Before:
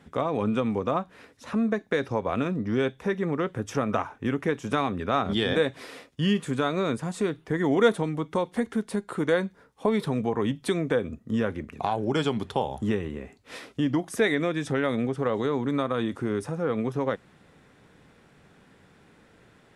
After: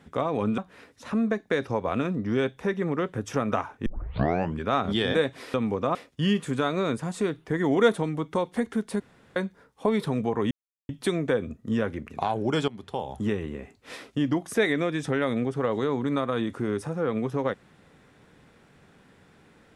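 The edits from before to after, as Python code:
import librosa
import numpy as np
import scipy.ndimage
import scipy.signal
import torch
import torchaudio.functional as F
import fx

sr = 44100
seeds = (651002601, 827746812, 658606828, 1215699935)

y = fx.edit(x, sr, fx.move(start_s=0.58, length_s=0.41, to_s=5.95),
    fx.tape_start(start_s=4.27, length_s=0.78),
    fx.room_tone_fill(start_s=9.0, length_s=0.36),
    fx.insert_silence(at_s=10.51, length_s=0.38),
    fx.fade_in_from(start_s=12.3, length_s=0.86, curve='qsin', floor_db=-18.0), tone=tone)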